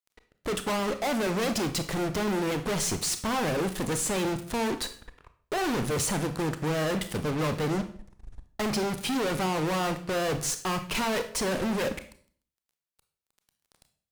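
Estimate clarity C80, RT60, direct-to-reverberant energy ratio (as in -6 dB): 16.0 dB, 0.50 s, 9.0 dB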